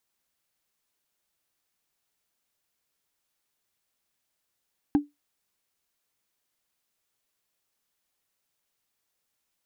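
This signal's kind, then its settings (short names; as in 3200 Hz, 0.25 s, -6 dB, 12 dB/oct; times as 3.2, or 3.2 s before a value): wood hit, lowest mode 291 Hz, decay 0.18 s, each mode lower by 11 dB, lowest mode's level -13.5 dB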